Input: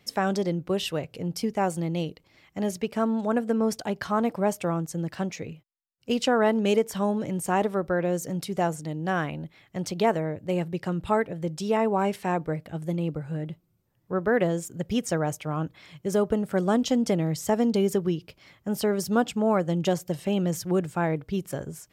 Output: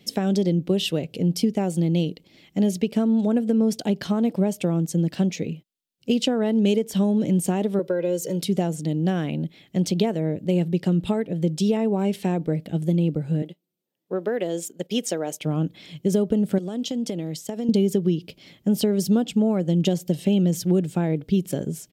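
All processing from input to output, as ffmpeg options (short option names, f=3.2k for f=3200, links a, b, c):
-filter_complex "[0:a]asettb=1/sr,asplit=3[a][b][c];[a]atrim=end=7.794[d];[b]atrim=start=7.79:end=8.42,asetpts=PTS-STARTPTS,afade=t=in:d=0.004:c=qsin,afade=t=out:st=0.626:d=0.004:c=qsin,highpass=240,aecho=1:1:2:0.91,atrim=end_sample=27783[e];[c]atrim=start=8.416[f];[d][e]acrossfade=d=0.004:c1=hsin:c2=qsin[g];[g][f]acrossfade=d=0.004:c1=qsin:c2=hsin,asettb=1/sr,asplit=3[h][i][j];[h]atrim=end=13.424[k];[i]atrim=start=13.42:end=15.41,asetpts=PTS-STARTPTS,afade=t=in:d=0.004:c=qsin,afade=t=out:st=1.986:d=0.004:c=qsin,highpass=400,agate=range=-10dB:threshold=-48dB:ratio=16:release=100:detection=peak[l];[j]atrim=start=15.406[m];[k][l]acrossfade=d=0.004:c1=hsin:c2=qsin[n];[n][m]acrossfade=d=0.004:c1=qsin:c2=hsin,asettb=1/sr,asplit=3[o][p][q];[o]atrim=end=16.584[r];[p]atrim=start=16.58:end=17.69,asetpts=PTS-STARTPTS,afade=t=in:d=0.004:c=qsin,afade=t=out:st=1.106:d=0.004:c=qsin,agate=range=-33dB:threshold=-30dB:ratio=3:release=100:detection=peak,highpass=f=360:p=1,acompressor=threshold=-33dB:ratio=5:attack=3.2:release=140:knee=1:detection=peak[s];[q]atrim=start=17.686[t];[r][s]acrossfade=d=0.004:c1=hsin:c2=qsin[u];[u][t]acrossfade=d=0.004:c1=qsin:c2=hsin,acompressor=threshold=-27dB:ratio=4,firequalizer=gain_entry='entry(100,0);entry(180,12);entry(1100,-6);entry(3200,9);entry(5200,5)':delay=0.05:min_phase=1"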